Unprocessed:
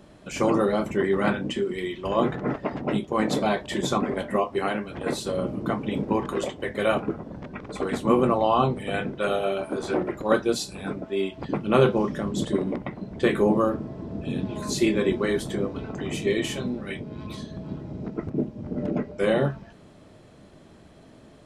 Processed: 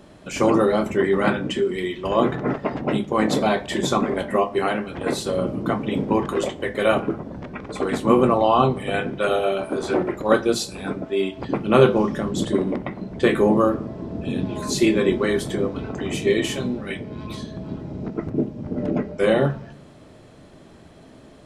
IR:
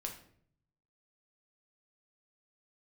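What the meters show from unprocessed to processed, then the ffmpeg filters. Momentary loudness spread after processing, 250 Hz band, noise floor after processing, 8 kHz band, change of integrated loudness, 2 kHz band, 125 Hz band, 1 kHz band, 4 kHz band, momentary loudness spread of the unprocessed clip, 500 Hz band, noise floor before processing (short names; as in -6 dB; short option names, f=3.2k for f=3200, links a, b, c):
13 LU, +3.5 dB, -47 dBFS, +4.0 dB, +4.0 dB, +4.0 dB, +3.0 dB, +4.0 dB, +4.0 dB, 12 LU, +4.0 dB, -51 dBFS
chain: -filter_complex "[0:a]bandreject=f=50:t=h:w=6,bandreject=f=100:t=h:w=6,bandreject=f=150:t=h:w=6,bandreject=f=200:t=h:w=6,asplit=2[a][b];[1:a]atrim=start_sample=2205,asetrate=36162,aresample=44100[c];[b][c]afir=irnorm=-1:irlink=0,volume=-10dB[d];[a][d]amix=inputs=2:normalize=0,volume=2dB"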